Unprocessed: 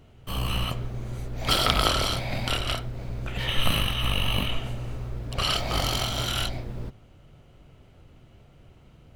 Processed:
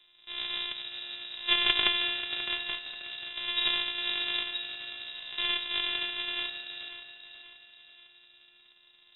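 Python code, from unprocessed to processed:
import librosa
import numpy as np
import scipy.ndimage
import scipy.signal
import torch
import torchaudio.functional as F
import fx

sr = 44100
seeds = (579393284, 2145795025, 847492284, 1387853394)

y = np.r_[np.sort(x[:len(x) // 128 * 128].reshape(-1, 128), axis=1).ravel(), x[len(x) // 128 * 128:]]
y = fx.peak_eq(y, sr, hz=62.0, db=-11.5, octaves=1.7)
y = fx.notch_comb(y, sr, f0_hz=220.0)
y = fx.echo_feedback(y, sr, ms=535, feedback_pct=43, wet_db=-9.0)
y = fx.freq_invert(y, sr, carrier_hz=3800)
y = fx.upward_expand(y, sr, threshold_db=-33.0, expansion=1.5)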